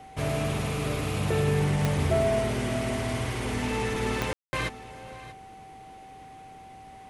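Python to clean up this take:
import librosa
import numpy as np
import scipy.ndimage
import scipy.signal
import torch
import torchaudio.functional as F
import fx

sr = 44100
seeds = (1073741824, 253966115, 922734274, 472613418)

y = fx.fix_declick_ar(x, sr, threshold=10.0)
y = fx.notch(y, sr, hz=770.0, q=30.0)
y = fx.fix_ambience(y, sr, seeds[0], print_start_s=6.58, print_end_s=7.08, start_s=4.33, end_s=4.53)
y = fx.fix_echo_inverse(y, sr, delay_ms=633, level_db=-17.0)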